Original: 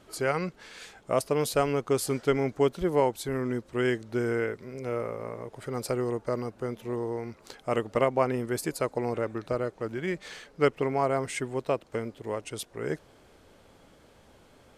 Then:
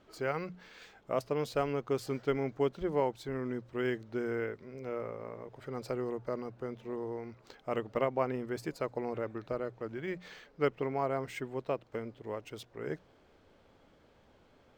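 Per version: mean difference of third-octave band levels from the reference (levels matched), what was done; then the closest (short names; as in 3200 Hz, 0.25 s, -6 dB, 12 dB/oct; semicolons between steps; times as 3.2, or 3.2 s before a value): 2.0 dB: air absorption 76 m; notches 60/120/180 Hz; decimation joined by straight lines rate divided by 2×; gain -6 dB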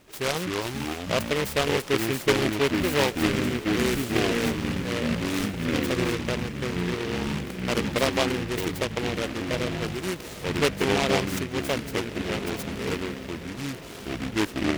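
12.5 dB: echoes that change speed 0.189 s, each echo -5 st, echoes 3; on a send: diffused feedback echo 1.521 s, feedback 45%, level -14 dB; on the sum: noise-modulated delay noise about 1900 Hz, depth 0.18 ms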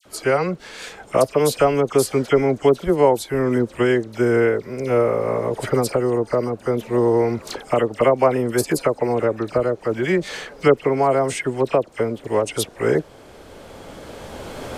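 6.0 dB: recorder AGC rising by 8.6 dB/s; bell 560 Hz +3.5 dB 1.6 oct; dispersion lows, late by 56 ms, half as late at 1800 Hz; gain +6 dB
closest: first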